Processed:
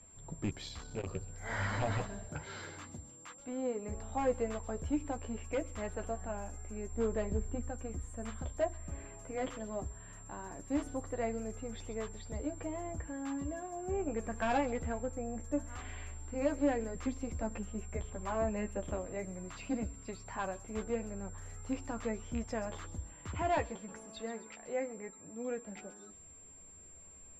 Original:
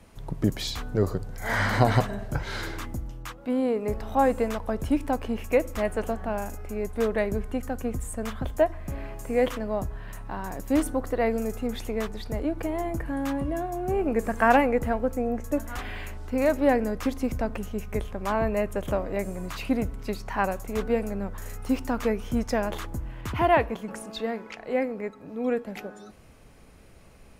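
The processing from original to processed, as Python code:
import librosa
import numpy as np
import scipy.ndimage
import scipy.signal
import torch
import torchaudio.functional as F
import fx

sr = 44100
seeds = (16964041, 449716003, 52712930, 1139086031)

y = fx.rattle_buzz(x, sr, strikes_db=-21.0, level_db=-23.0)
y = fx.highpass(y, sr, hz=110.0, slope=12, at=(2.27, 3.4))
y = fx.tilt_shelf(y, sr, db=5.0, hz=890.0, at=(6.91, 7.69))
y = np.clip(y, -10.0 ** (-15.5 / 20.0), 10.0 ** (-15.5 / 20.0))
y = fx.chorus_voices(y, sr, voices=6, hz=0.46, base_ms=12, depth_ms=1.9, mix_pct=35)
y = y + 10.0 ** (-40.0 / 20.0) * np.sin(2.0 * np.pi * 7400.0 * np.arange(len(y)) / sr)
y = fx.air_absorb(y, sr, metres=95.0)
y = fx.echo_wet_highpass(y, sr, ms=130, feedback_pct=41, hz=4700.0, wet_db=-8.0)
y = fx.transformer_sat(y, sr, knee_hz=310.0, at=(0.51, 1.14))
y = F.gain(torch.from_numpy(y), -8.0).numpy()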